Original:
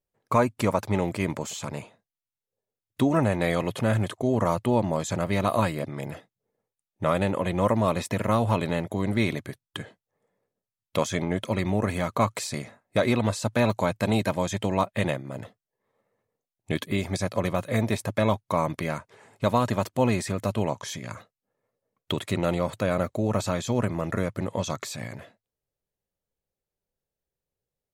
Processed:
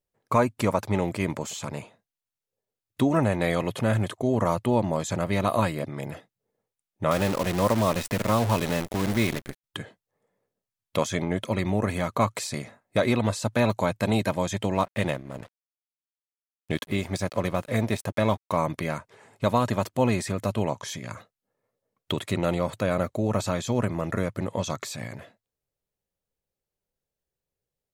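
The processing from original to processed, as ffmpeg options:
ffmpeg -i in.wav -filter_complex "[0:a]asettb=1/sr,asplit=3[link_01][link_02][link_03];[link_01]atrim=end=7.114[link_04];[link_02]atrim=start=7.11:end=9.64,asetpts=PTS-STARTPTS,afade=type=in:duration=0.004:curve=qsin,afade=type=out:start_time=2.526:duration=0.004:curve=qsin,acrusher=bits=6:dc=4:mix=0:aa=0.000001[link_05];[link_03]atrim=start=9.636[link_06];[link_04][link_05]acrossfade=duration=0.004:curve1=hsin:curve2=qsin[link_07];[link_07][link_06]acrossfade=duration=0.004:curve1=qsin:curve2=hsin,asettb=1/sr,asplit=3[link_08][link_09][link_10];[link_08]atrim=end=14.744[link_11];[link_09]atrim=start=14.74:end=18.57,asetpts=PTS-STARTPTS,afade=type=in:duration=0.004:curve=qsin,afade=type=out:start_time=3.826:duration=0.004:curve=qsin,aeval=exprs='sgn(val(0))*max(abs(val(0))-0.00531,0)':channel_layout=same[link_12];[link_10]atrim=start=18.566[link_13];[link_11][link_12]acrossfade=duration=0.004:curve1=hsin:curve2=qsin[link_14];[link_14][link_13]acrossfade=duration=0.004:curve1=qsin:curve2=hsin" out.wav

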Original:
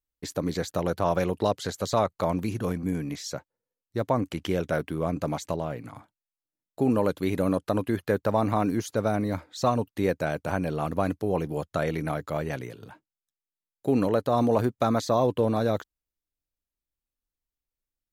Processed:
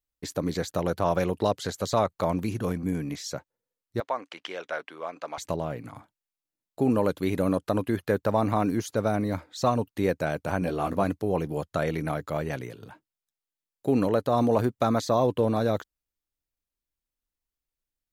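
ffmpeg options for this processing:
ffmpeg -i in.wav -filter_complex "[0:a]asettb=1/sr,asplit=3[link_01][link_02][link_03];[link_01]atrim=end=4.004[link_04];[link_02]atrim=start=4:end=5.38,asetpts=PTS-STARTPTS,afade=type=in:duration=0.004:curve=qsin,afade=type=out:start_time=1.376:duration=0.004:curve=qsin,highpass=760,lowpass=4700[link_05];[link_03]atrim=start=5.376[link_06];[link_04][link_05]acrossfade=duration=0.004:curve1=hsin:curve2=qsin[link_07];[link_07][link_06]acrossfade=duration=0.004:curve1=qsin:curve2=hsin,asettb=1/sr,asplit=3[link_08][link_09][link_10];[link_08]atrim=end=10.604[link_11];[link_09]atrim=start=10.6:end=11.04,asetpts=PTS-STARTPTS,afade=type=in:duration=0.004:curve=qsin,afade=type=out:start_time=0.436:duration=0.004:curve=qsin,asplit=2[link_12][link_13];[link_13]adelay=16,volume=-4.5dB[link_14];[link_12][link_14]amix=inputs=2:normalize=0,atrim=end_sample=19404[link_15];[link_10]atrim=start=11.036[link_16];[link_11][link_15]acrossfade=duration=0.004:curve1=hsin:curve2=qsin[link_17];[link_17][link_16]acrossfade=duration=0.004:curve1=qsin:curve2=hsin" out.wav

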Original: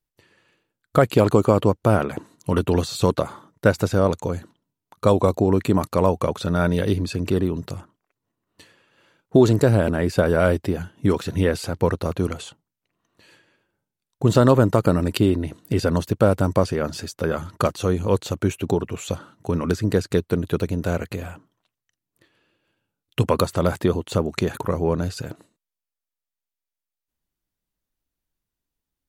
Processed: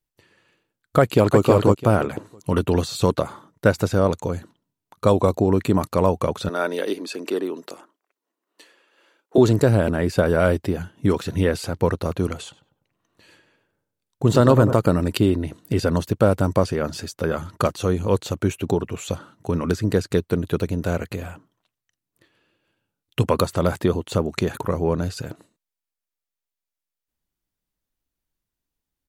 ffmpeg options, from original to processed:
ffmpeg -i in.wav -filter_complex "[0:a]asplit=2[link_01][link_02];[link_02]afade=type=in:start_time=1:duration=0.01,afade=type=out:start_time=1.41:duration=0.01,aecho=0:1:330|660|990:0.707946|0.141589|0.0283178[link_03];[link_01][link_03]amix=inputs=2:normalize=0,asettb=1/sr,asplit=3[link_04][link_05][link_06];[link_04]atrim=end=6.494[link_07];[link_05]atrim=start=6.49:end=9.38,asetpts=PTS-STARTPTS,afade=type=in:duration=0.004:curve=qsin,afade=type=out:start_time=2.886:duration=0.004:curve=qsin,highpass=frequency=300:width=0.5412,highpass=frequency=300:width=1.3066[link_08];[link_06]atrim=start=9.376[link_09];[link_07][link_08]acrossfade=duration=0.004:curve1=hsin:curve2=qsin[link_10];[link_10][link_09]acrossfade=duration=0.004:curve1=qsin:curve2=hsin,asettb=1/sr,asplit=3[link_11][link_12][link_13];[link_11]atrim=end=12.434[link_14];[link_12]atrim=start=12.43:end=14.73,asetpts=PTS-STARTPTS,afade=type=in:duration=0.004:curve=qsin,afade=type=out:start_time=2.296:duration=0.004:curve=qsin,asplit=2[link_15][link_16];[link_16]adelay=99,lowpass=frequency=1100:poles=1,volume=-8.5dB,asplit=2[link_17][link_18];[link_18]adelay=99,lowpass=frequency=1100:poles=1,volume=0.53,asplit=2[link_19][link_20];[link_20]adelay=99,lowpass=frequency=1100:poles=1,volume=0.53,asplit=2[link_21][link_22];[link_22]adelay=99,lowpass=frequency=1100:poles=1,volume=0.53,asplit=2[link_23][link_24];[link_24]adelay=99,lowpass=frequency=1100:poles=1,volume=0.53,asplit=2[link_25][link_26];[link_26]adelay=99,lowpass=frequency=1100:poles=1,volume=0.53[link_27];[link_15][link_17][link_19][link_21][link_23][link_25][link_27]amix=inputs=7:normalize=0,atrim=end_sample=101430[link_28];[link_13]atrim=start=14.726[link_29];[link_14][link_28]acrossfade=duration=0.004:curve1=hsin:curve2=qsin[link_30];[link_30][link_29]acrossfade=duration=0.004:curve1=qsin:curve2=hsin" out.wav

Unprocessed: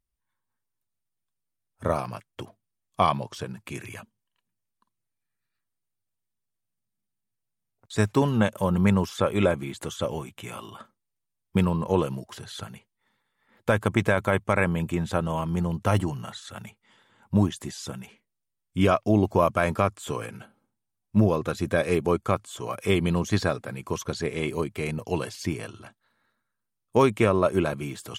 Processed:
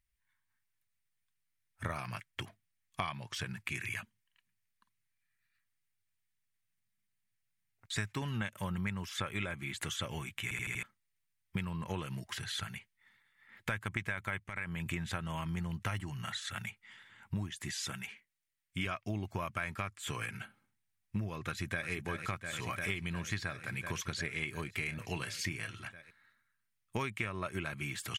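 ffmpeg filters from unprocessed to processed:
ffmpeg -i in.wav -filter_complex "[0:a]asettb=1/sr,asplit=3[link_01][link_02][link_03];[link_01]atrim=end=14.404[link_04];[link_02]atrim=start=14.4:end=14.86,asetpts=PTS-STARTPTS,afade=type=in:duration=0.004:curve=qsin,afade=type=out:start_time=0.456:duration=0.004:curve=qsin,acompressor=threshold=-29dB:ratio=6:attack=3.2:release=140:knee=1:detection=peak[link_05];[link_03]atrim=start=14.856[link_06];[link_04][link_05]acrossfade=duration=0.004:curve1=hsin:curve2=qsin[link_07];[link_07][link_06]acrossfade=duration=0.004:curve1=qsin:curve2=hsin,asettb=1/sr,asplit=3[link_08][link_09][link_10];[link_08]atrim=end=17.834[link_11];[link_09]atrim=start=17.83:end=18.86,asetpts=PTS-STARTPTS,afade=type=in:duration=0.004:curve=qsin,afade=type=out:start_time=1.026:duration=0.004:curve=qsin,lowshelf=frequency=160:gain=-8.5[link_12];[link_10]atrim=start=18.856[link_13];[link_11][link_12]acrossfade=duration=0.004:curve1=hsin:curve2=qsin[link_14];[link_14][link_13]acrossfade=duration=0.004:curve1=qsin:curve2=hsin,asplit=2[link_15][link_16];[link_16]afade=type=in:start_time=21.46:duration=0.01,afade=type=out:start_time=21.9:duration=0.01,aecho=0:1:350|700|1050|1400|1750|2100|2450|2800|3150|3500|3850|4200:0.398107|0.318486|0.254789|0.203831|0.163065|0.130452|0.104361|0.0834891|0.0667913|0.053433|0.0427464|0.0341971[link_17];[link_15][link_17]amix=inputs=2:normalize=0,asettb=1/sr,asplit=3[link_18][link_19][link_20];[link_18]atrim=end=24.754[link_21];[link_19]atrim=start=24.75:end=25.72,asetpts=PTS-STARTPTS,afade=type=in:duration=0.004:curve=qsin,afade=type=out:start_time=0.966:duration=0.004:curve=qsin,asplit=2[link_22][link_23];[link_23]adelay=29,volume=-12dB[link_24];[link_22][link_24]amix=inputs=2:normalize=0,atrim=end_sample=42777[link_25];[link_20]atrim=start=25.716[link_26];[link_21][link_25]acrossfade=duration=0.004:curve1=hsin:curve2=qsin[link_27];[link_27][link_26]acrossfade=duration=0.004:curve1=qsin:curve2=hsin,asplit=6[link_28][link_29][link_30][link_31][link_32][link_33];[link_28]atrim=end=10.512[link_34];[link_29]atrim=start=10.428:end=10.512[link_35];[link_30]atrim=start=10.428:end=10.512[link_36];[link_31]atrim=start=10.428:end=10.512[link_37];[link_32]atrim=start=10.428:end=10.512[link_38];[link_33]atrim=start=10.828[link_39];[link_34][link_35]acrossfade=duration=0.004:curve1=hsin:curve2=hsin[link_40];[link_40][link_36]acrossfade=duration=0.004:curve1=hsin:curve2=hsin[link_41];[link_41][link_37]acrossfade=duration=0.004:curve1=hsin:curve2=hsin[link_42];[link_42][link_38]acrossfade=duration=0.004:curve1=hsin:curve2=hsin[link_43];[link_43][link_39]acrossfade=duration=0.004:curve1=hsin:curve2=hsin,equalizer=frequency=250:width_type=o:width=1:gain=-5,equalizer=frequency=500:width_type=o:width=1:gain=-11,equalizer=frequency=1000:width_type=o:width=1:gain=-4,equalizer=frequency=2000:width_type=o:width=1:gain=10,acompressor=threshold=-34dB:ratio=6" out.wav

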